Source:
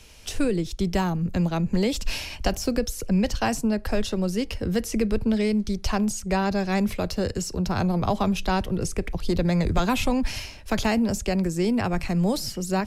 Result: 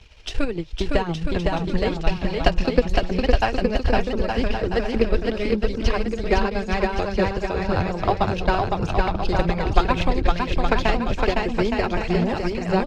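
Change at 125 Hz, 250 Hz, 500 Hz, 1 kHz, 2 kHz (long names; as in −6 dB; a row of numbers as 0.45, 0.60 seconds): +1.0, −1.5, +5.0, +5.5, +5.5 decibels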